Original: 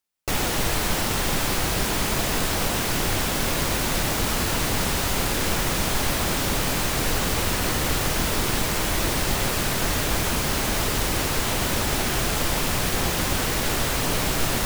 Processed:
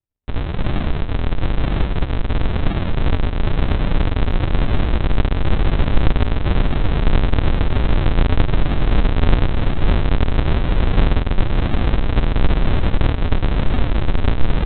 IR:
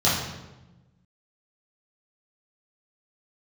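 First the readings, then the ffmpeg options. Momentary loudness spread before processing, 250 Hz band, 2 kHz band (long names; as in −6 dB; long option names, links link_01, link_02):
0 LU, +5.0 dB, −3.0 dB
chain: -af "asubboost=boost=3:cutoff=110,aresample=8000,acrusher=samples=32:mix=1:aa=0.000001:lfo=1:lforange=32:lforate=1,aresample=44100,volume=4dB"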